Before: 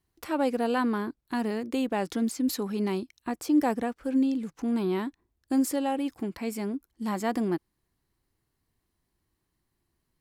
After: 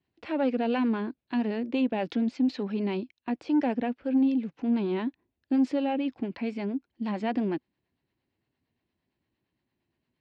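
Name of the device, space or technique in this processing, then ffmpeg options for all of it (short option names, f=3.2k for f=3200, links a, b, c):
guitar amplifier with harmonic tremolo: -filter_complex "[0:a]acrossover=split=480[a][b];[a]aeval=exprs='val(0)*(1-0.5/2+0.5/2*cos(2*PI*8.7*n/s))':c=same[c];[b]aeval=exprs='val(0)*(1-0.5/2-0.5/2*cos(2*PI*8.7*n/s))':c=same[d];[c][d]amix=inputs=2:normalize=0,asoftclip=type=tanh:threshold=-21.5dB,highpass=96,equalizer=f=250:t=q:w=4:g=5,equalizer=f=590:t=q:w=4:g=4,equalizer=f=1.2k:t=q:w=4:g=-6,equalizer=f=2.6k:t=q:w=4:g=5,lowpass=f=4.1k:w=0.5412,lowpass=f=4.1k:w=1.3066,asettb=1/sr,asplit=3[e][f][g];[e]atrim=end=1.914[h];[f]atrim=start=1.91:end=3.43,asetpts=PTS-STARTPTS,afade=t=in:d=0.004:c=qsin,afade=t=out:st=1.516:d=0.004:c=qsin,agate=range=-10dB:threshold=-43dB:ratio=16:detection=peak[i];[g]atrim=start=3.426[j];[h][i]acrossfade=d=0.004:c1=hsin:c2=qsin[k];[k][j]acrossfade=d=0.004:c1=qsin:c2=hsin,volume=1.5dB"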